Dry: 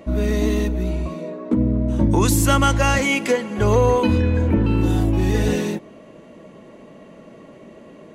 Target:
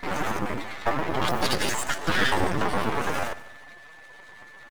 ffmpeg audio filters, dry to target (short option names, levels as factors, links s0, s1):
-filter_complex "[0:a]highshelf=f=3800:g=-11,bandreject=f=57.2:t=h:w=4,bandreject=f=114.4:t=h:w=4,bandreject=f=171.6:t=h:w=4,bandreject=f=228.8:t=h:w=4,bandreject=f=286:t=h:w=4,bandreject=f=343.2:t=h:w=4,bandreject=f=400.4:t=h:w=4,bandreject=f=457.6:t=h:w=4,bandreject=f=514.8:t=h:w=4,bandreject=f=572:t=h:w=4,acrossover=split=400[s0][s1];[s0]aeval=exprs='val(0)*(1-0.5/2+0.5/2*cos(2*PI*5.2*n/s))':c=same[s2];[s1]aeval=exprs='val(0)*(1-0.5/2-0.5/2*cos(2*PI*5.2*n/s))':c=same[s3];[s2][s3]amix=inputs=2:normalize=0,afftfilt=real='hypot(re,im)*cos(2*PI*random(0))':imag='hypot(re,im)*sin(2*PI*random(1))':win_size=512:overlap=0.75,aresample=16000,aeval=exprs='max(val(0),0)':c=same,aresample=44100,aeval=exprs='val(0)+0.00251*sin(2*PI*520*n/s)':c=same,asetrate=85689,aresample=44100,atempo=0.514651,acrusher=bits=8:mode=log:mix=0:aa=0.000001,asplit=2[s4][s5];[s5]aecho=0:1:255|510|765:0.126|0.0516|0.0212[s6];[s4][s6]amix=inputs=2:normalize=0,asetrate=76440,aresample=44100,volume=1.88"